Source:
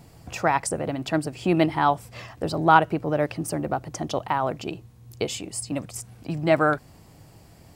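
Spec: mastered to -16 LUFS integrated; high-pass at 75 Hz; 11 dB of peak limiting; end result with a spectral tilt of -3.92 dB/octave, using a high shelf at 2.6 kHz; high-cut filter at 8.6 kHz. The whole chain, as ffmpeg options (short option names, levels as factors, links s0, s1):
-af "highpass=75,lowpass=8600,highshelf=f=2600:g=9,volume=3.35,alimiter=limit=0.841:level=0:latency=1"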